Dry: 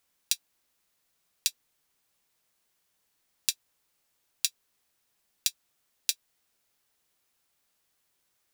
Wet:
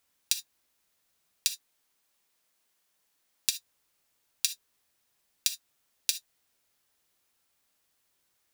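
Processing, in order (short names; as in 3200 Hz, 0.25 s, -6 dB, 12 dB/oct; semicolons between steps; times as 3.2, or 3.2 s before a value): 1.48–3.49 bell 70 Hz -9 dB 2.2 oct; non-linear reverb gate 90 ms flat, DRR 9.5 dB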